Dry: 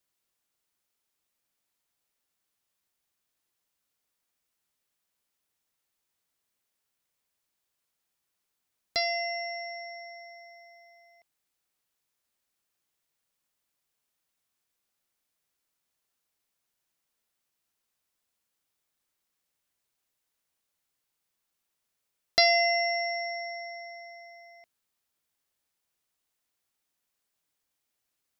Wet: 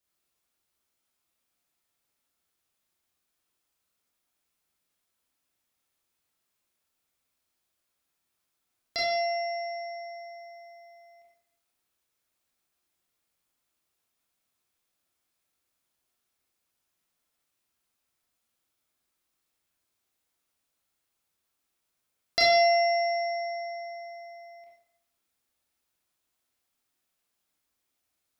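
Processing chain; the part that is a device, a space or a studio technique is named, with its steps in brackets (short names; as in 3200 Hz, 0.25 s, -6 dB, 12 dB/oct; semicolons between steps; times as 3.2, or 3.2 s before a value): bathroom (reverb RT60 0.70 s, pre-delay 23 ms, DRR -5 dB); gain -4 dB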